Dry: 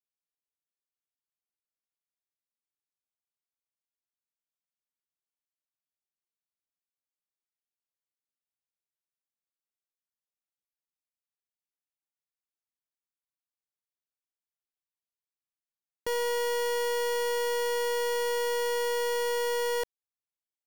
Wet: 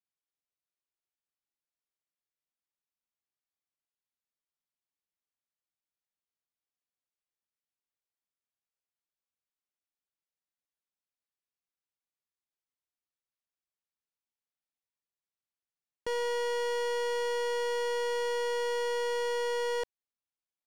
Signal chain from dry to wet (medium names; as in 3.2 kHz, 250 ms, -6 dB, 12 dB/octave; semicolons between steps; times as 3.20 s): distance through air 54 m; trim -2 dB